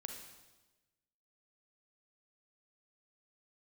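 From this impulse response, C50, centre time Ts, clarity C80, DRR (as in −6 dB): 4.5 dB, 37 ms, 7.0 dB, 3.0 dB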